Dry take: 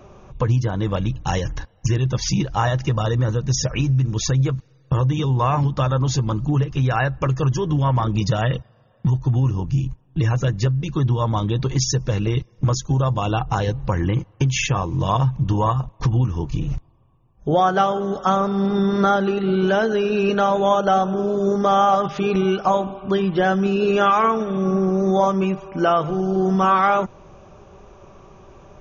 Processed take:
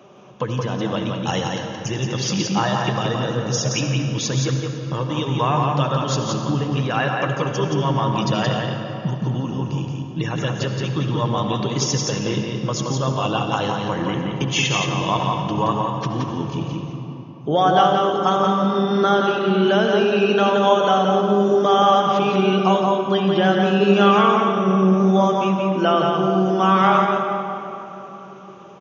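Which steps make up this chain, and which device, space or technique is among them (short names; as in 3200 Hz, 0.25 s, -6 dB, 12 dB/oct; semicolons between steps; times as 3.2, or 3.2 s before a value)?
PA in a hall (HPF 150 Hz 24 dB/oct; bell 3100 Hz +8 dB 0.38 oct; echo 0.173 s -4 dB; reverb RT60 3.6 s, pre-delay 60 ms, DRR 4 dB); gain -1 dB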